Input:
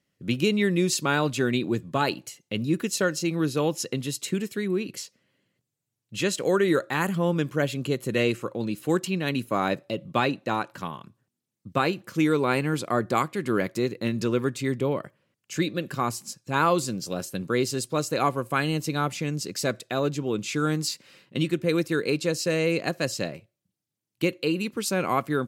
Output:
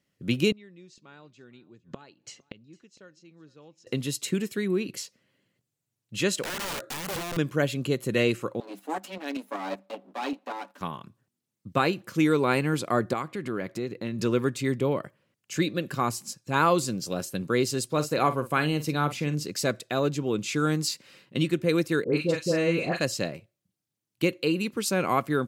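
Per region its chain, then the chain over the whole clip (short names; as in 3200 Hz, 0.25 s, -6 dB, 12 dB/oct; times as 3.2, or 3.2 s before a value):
0.52–3.87 LPF 6700 Hz 24 dB/oct + flipped gate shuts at -27 dBFS, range -27 dB + echo 0.456 s -23 dB
6.43–7.37 compressor 4:1, threshold -27 dBFS + wrapped overs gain 28.5 dB
8.6–10.81 minimum comb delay 7 ms + rippled Chebyshev high-pass 190 Hz, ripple 6 dB + tremolo saw up 5.2 Hz, depth 50%
13.13–14.19 high shelf 5200 Hz -8 dB + compressor 2:1, threshold -31 dBFS
17.87–19.46 dynamic EQ 7200 Hz, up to -5 dB, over -48 dBFS, Q 1.1 + doubler 47 ms -12 dB
22.04–23.01 high shelf 4500 Hz -10 dB + doubler 41 ms -8 dB + dispersion highs, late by 84 ms, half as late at 1200 Hz
whole clip: dry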